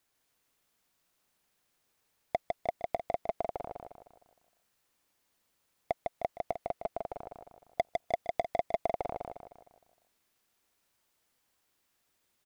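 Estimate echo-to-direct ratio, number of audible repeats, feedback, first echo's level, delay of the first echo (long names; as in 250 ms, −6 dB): −2.5 dB, 5, 44%, −3.5 dB, 154 ms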